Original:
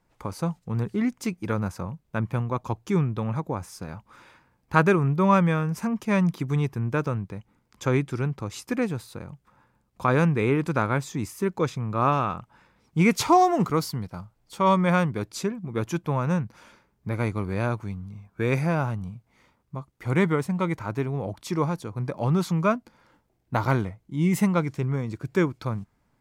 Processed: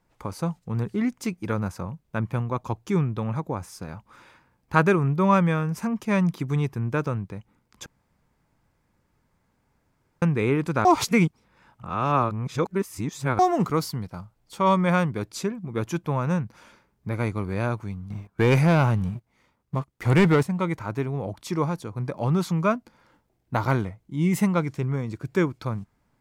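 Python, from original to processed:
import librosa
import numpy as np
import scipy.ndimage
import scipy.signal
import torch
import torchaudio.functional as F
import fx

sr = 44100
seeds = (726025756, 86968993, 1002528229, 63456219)

y = fx.leveller(x, sr, passes=2, at=(18.1, 20.43))
y = fx.edit(y, sr, fx.room_tone_fill(start_s=7.86, length_s=2.36),
    fx.reverse_span(start_s=10.85, length_s=2.54), tone=tone)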